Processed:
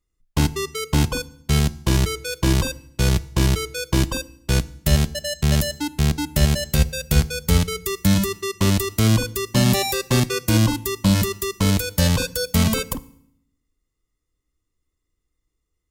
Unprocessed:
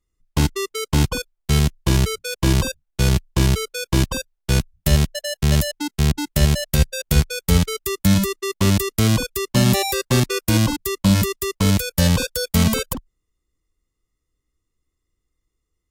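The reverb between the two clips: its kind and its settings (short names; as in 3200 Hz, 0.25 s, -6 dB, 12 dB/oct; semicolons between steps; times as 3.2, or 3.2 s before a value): FDN reverb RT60 0.67 s, low-frequency decay 1.45×, high-frequency decay 0.95×, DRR 15.5 dB; gain -1 dB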